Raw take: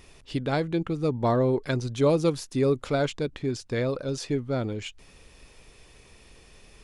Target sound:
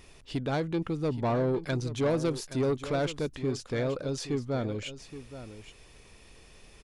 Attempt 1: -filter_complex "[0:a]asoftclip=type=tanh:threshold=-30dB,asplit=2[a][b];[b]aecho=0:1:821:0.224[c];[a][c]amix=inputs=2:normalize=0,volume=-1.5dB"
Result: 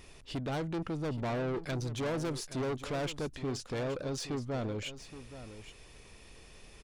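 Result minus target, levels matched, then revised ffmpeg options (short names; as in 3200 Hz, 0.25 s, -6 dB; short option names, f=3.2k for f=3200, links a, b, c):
soft clip: distortion +8 dB
-filter_complex "[0:a]asoftclip=type=tanh:threshold=-20.5dB,asplit=2[a][b];[b]aecho=0:1:821:0.224[c];[a][c]amix=inputs=2:normalize=0,volume=-1.5dB"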